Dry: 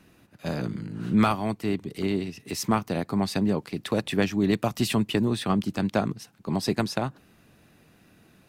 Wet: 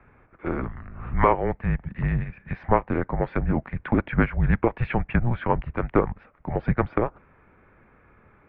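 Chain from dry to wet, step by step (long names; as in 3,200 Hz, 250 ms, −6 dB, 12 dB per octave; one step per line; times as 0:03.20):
single-sideband voice off tune −240 Hz 290–2,300 Hz
level +6.5 dB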